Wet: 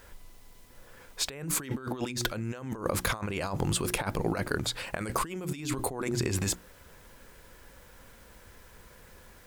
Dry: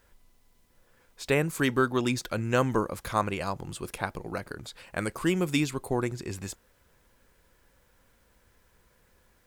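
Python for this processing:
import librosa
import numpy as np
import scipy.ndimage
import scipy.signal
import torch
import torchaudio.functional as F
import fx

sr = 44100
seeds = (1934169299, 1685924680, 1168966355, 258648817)

y = fx.hum_notches(x, sr, base_hz=60, count=6)
y = fx.over_compress(y, sr, threshold_db=-38.0, ratio=-1.0)
y = y * 10.0 ** (4.5 / 20.0)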